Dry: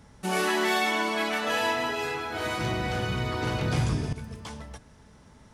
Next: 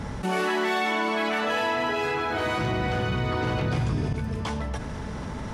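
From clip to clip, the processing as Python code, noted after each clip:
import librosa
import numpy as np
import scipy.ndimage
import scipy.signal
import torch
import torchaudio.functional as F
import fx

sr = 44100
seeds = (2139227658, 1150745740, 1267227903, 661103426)

y = fx.high_shelf(x, sr, hz=5000.0, db=-12.0)
y = fx.env_flatten(y, sr, amount_pct=70)
y = y * 10.0 ** (-1.5 / 20.0)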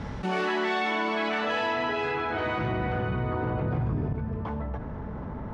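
y = fx.filter_sweep_lowpass(x, sr, from_hz=4700.0, to_hz=1200.0, start_s=1.71, end_s=3.53, q=0.77)
y = y * 10.0 ** (-2.0 / 20.0)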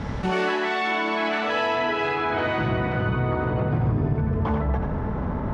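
y = fx.rider(x, sr, range_db=4, speed_s=0.5)
y = y + 10.0 ** (-5.5 / 20.0) * np.pad(y, (int(88 * sr / 1000.0), 0))[:len(y)]
y = y * 10.0 ** (4.0 / 20.0)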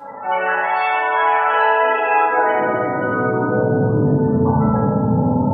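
y = fx.spec_topn(x, sr, count=32)
y = fx.filter_sweep_highpass(y, sr, from_hz=840.0, to_hz=140.0, start_s=1.19, end_s=4.73, q=1.2)
y = fx.rev_fdn(y, sr, rt60_s=1.6, lf_ratio=1.1, hf_ratio=0.4, size_ms=11.0, drr_db=-8.5)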